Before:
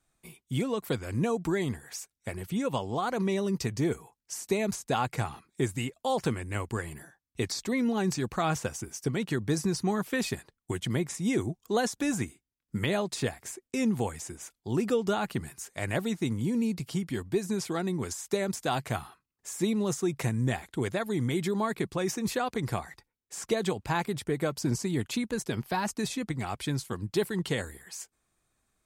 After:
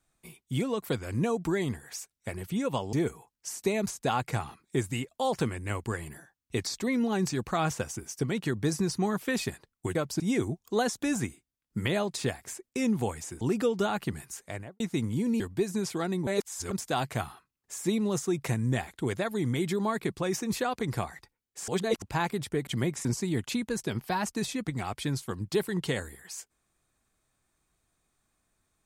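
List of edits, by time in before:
2.93–3.78 s: delete
10.80–11.18 s: swap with 24.42–24.67 s
14.39–14.69 s: delete
15.66–16.08 s: studio fade out
16.68–17.15 s: delete
18.02–18.46 s: reverse
23.43–23.77 s: reverse

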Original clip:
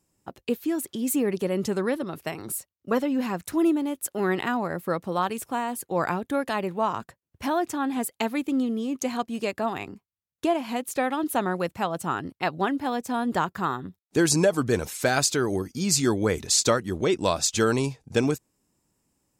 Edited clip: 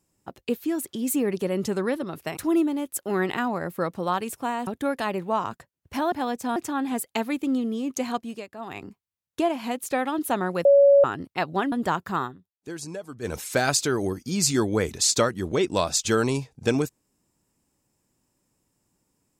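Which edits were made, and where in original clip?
2.37–3.46 s: delete
5.76–6.16 s: delete
9.22–9.91 s: dip -12.5 dB, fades 0.28 s
11.70–12.09 s: bleep 562 Hz -11.5 dBFS
12.77–13.21 s: move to 7.61 s
13.73–14.83 s: dip -15 dB, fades 0.13 s

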